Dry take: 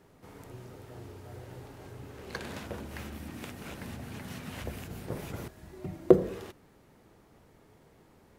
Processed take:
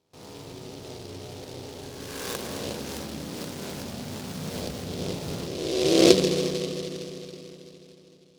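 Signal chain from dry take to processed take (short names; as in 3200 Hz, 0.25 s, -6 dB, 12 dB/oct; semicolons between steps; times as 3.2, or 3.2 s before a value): spectral swells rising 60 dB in 1.27 s; HPF 150 Hz 6 dB/oct; gate with hold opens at -46 dBFS; LPF 1300 Hz 6 dB/oct; notches 60/120/180/240/300/360 Hz; in parallel at 0 dB: compressor, threshold -38 dBFS, peak gain reduction 25 dB; on the sum: reverb RT60 3.5 s, pre-delay 72 ms, DRR 6 dB; noise-modulated delay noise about 3900 Hz, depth 0.14 ms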